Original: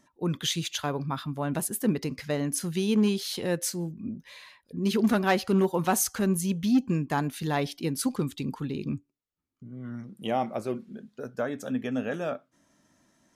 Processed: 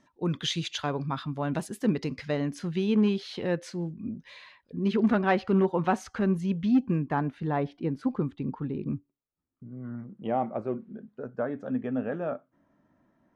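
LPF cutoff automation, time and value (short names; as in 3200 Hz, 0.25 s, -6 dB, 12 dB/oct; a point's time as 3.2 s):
2.11 s 4900 Hz
2.71 s 2900 Hz
3.8 s 2900 Hz
4.27 s 4900 Hz
4.92 s 2400 Hz
6.77 s 2400 Hz
7.47 s 1400 Hz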